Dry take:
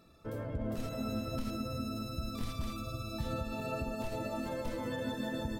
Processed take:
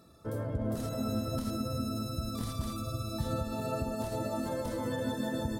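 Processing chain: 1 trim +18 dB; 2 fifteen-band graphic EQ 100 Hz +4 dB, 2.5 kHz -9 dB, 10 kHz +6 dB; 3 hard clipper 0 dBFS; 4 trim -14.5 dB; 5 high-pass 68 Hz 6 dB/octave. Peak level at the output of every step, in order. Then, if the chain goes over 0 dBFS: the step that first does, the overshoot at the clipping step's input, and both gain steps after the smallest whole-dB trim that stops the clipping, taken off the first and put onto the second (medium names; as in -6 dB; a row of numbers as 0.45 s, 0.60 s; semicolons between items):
-7.0 dBFS, -5.5 dBFS, -5.5 dBFS, -20.0 dBFS, -21.0 dBFS; nothing clips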